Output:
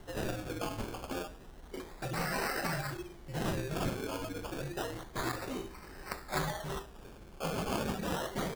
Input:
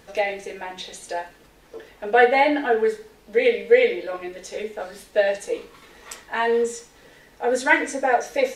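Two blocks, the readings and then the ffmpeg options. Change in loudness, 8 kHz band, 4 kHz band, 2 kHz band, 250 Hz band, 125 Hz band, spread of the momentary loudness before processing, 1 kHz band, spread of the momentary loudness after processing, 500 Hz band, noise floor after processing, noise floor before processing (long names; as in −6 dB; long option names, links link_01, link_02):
−15.5 dB, −7.0 dB, −7.5 dB, −16.0 dB, −7.0 dB, can't be measured, 18 LU, −14.5 dB, 12 LU, −19.0 dB, −52 dBFS, −53 dBFS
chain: -filter_complex "[0:a]afftfilt=real='re*lt(hypot(re,im),0.2)':imag='im*lt(hypot(re,im),0.2)':win_size=1024:overlap=0.75,lowshelf=frequency=160:gain=12,asplit=2[link_01][link_02];[link_02]adelay=100,highpass=300,lowpass=3400,asoftclip=type=hard:threshold=-24.5dB,volume=-19dB[link_03];[link_01][link_03]amix=inputs=2:normalize=0,afreqshift=-77,acrusher=samples=18:mix=1:aa=0.000001:lfo=1:lforange=10.8:lforate=0.3,volume=-3dB"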